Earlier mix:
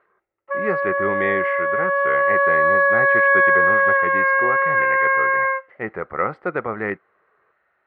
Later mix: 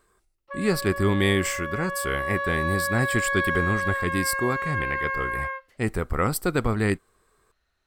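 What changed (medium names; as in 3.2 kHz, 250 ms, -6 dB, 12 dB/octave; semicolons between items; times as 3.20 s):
background -8.5 dB; master: remove cabinet simulation 230–2100 Hz, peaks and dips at 260 Hz -9 dB, 550 Hz +5 dB, 800 Hz +3 dB, 1.3 kHz +4 dB, 2 kHz +6 dB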